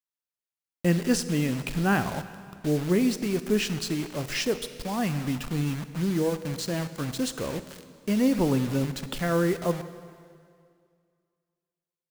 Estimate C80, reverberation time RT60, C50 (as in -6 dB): 13.0 dB, 2.2 s, 12.0 dB